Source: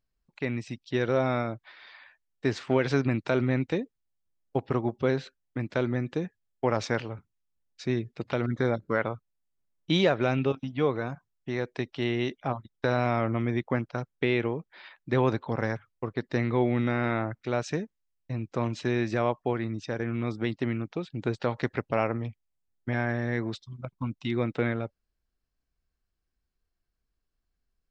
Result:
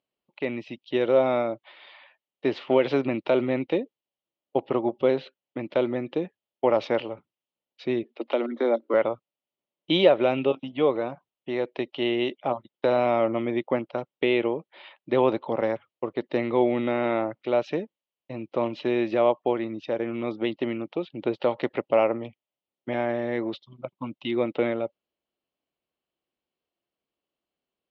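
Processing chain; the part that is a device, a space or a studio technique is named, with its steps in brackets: 8.03–8.94 s: Chebyshev high-pass 230 Hz, order 6; kitchen radio (cabinet simulation 230–3900 Hz, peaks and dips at 340 Hz +4 dB, 570 Hz +8 dB, 860 Hz +3 dB, 1.6 kHz -9 dB, 3 kHz +7 dB); trim +1.5 dB

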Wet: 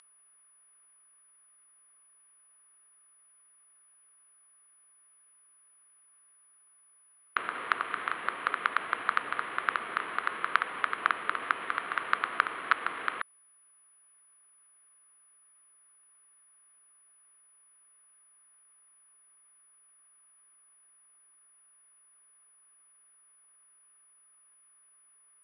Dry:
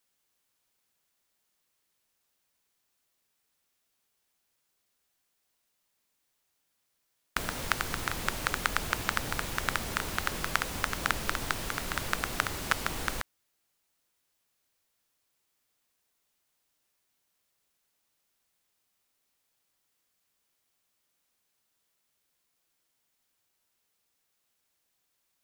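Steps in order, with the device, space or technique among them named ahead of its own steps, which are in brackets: toy sound module (decimation joined by straight lines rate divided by 8×; class-D stage that switches slowly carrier 9.9 kHz; cabinet simulation 580–4100 Hz, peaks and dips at 580 Hz -8 dB, 830 Hz -9 dB, 1.2 kHz +5 dB, 2.6 kHz -3 dB, 3.7 kHz -4 dB); trim +4 dB

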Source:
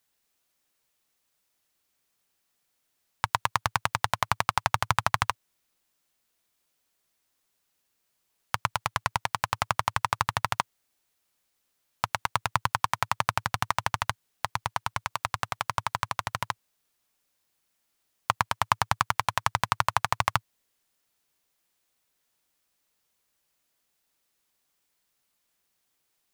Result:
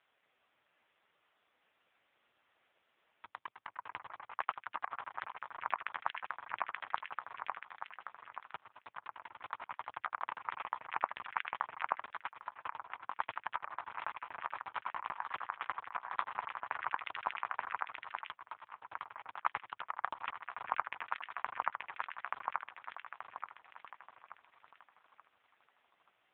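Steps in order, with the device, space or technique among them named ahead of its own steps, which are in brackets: echo whose repeats swap between lows and highs 440 ms, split 1.9 kHz, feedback 63%, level -6 dB; 3.36–4.63 s: dynamic bell 4.3 kHz, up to -4 dB, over -51 dBFS, Q 2.3; voicemail (band-pass 350–2800 Hz; compression 12:1, threshold -39 dBFS, peak gain reduction 23.5 dB; trim +14 dB; AMR-NB 5.15 kbps 8 kHz)

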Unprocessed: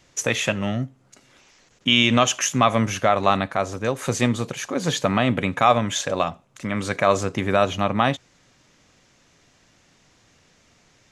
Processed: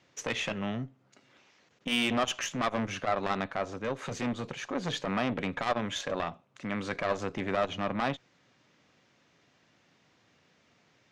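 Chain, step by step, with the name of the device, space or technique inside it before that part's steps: valve radio (band-pass 120–4300 Hz; valve stage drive 14 dB, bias 0.45; transformer saturation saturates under 590 Hz); trim -4.5 dB

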